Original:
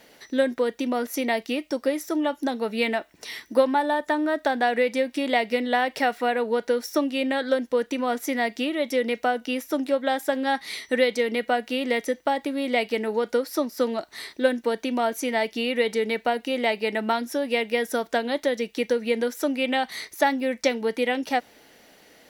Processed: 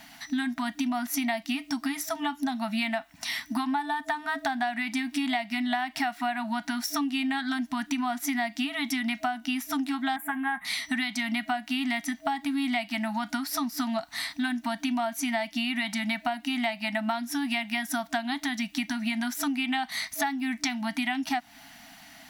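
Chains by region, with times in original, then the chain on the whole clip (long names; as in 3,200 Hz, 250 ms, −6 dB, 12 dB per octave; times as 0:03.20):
0:10.16–0:10.65: Butterworth band-reject 4,900 Hz, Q 0.61 + comb filter 5.6 ms, depth 55%
whole clip: brick-wall band-stop 300–640 Hz; downward compressor, threshold −31 dBFS; level +5 dB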